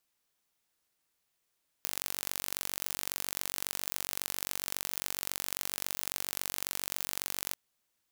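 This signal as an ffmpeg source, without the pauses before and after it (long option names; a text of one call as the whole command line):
ffmpeg -f lavfi -i "aevalsrc='0.531*eq(mod(n,932),0)*(0.5+0.5*eq(mod(n,1864),0))':duration=5.69:sample_rate=44100" out.wav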